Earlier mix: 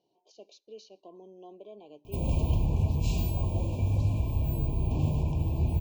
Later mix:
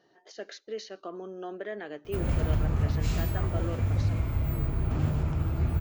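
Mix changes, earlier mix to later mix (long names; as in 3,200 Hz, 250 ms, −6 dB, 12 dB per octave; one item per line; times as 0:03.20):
speech +10.0 dB
master: remove linear-phase brick-wall band-stop 1,100–2,300 Hz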